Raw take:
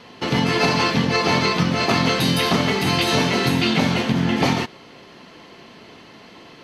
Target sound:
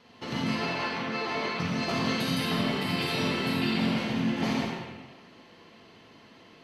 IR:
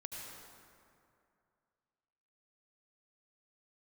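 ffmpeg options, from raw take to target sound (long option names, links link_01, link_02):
-filter_complex "[0:a]asettb=1/sr,asplit=3[link_01][link_02][link_03];[link_01]atrim=end=0.554[link_04];[link_02]atrim=start=0.55:end=1.6,asetpts=PTS-STARTPTS,afade=type=in:duration=0.004:curve=qsin,afade=type=out:start_time=1.046:duration=0.004:curve=qsin,bass=frequency=250:gain=-12,treble=frequency=4000:gain=-9[link_05];[link_03]atrim=start=1.596[link_06];[link_04][link_05]acrossfade=duration=0.004:curve1=hsin:curve2=qsin[link_07];[link_07][link_06]acrossfade=duration=0.004:curve1=qsin:curve2=hsin,asettb=1/sr,asplit=3[link_08][link_09][link_10];[link_08]atrim=end=2.404[link_11];[link_09]atrim=start=2.4:end=3.98,asetpts=PTS-STARTPTS,afade=type=in:duration=0.004:curve=qsin,afade=type=out:start_time=1.576:duration=0.004:curve=qsin,bandreject=frequency=6300:width=5.1[link_12];[link_10]atrim=start=3.976[link_13];[link_11][link_12]acrossfade=duration=0.004:curve1=hsin:curve2=qsin[link_14];[link_14][link_13]acrossfade=duration=0.004:curve1=qsin:curve2=hsin[link_15];[1:a]atrim=start_sample=2205,asetrate=83790,aresample=44100[link_16];[link_15][link_16]afir=irnorm=-1:irlink=0,volume=-2.5dB"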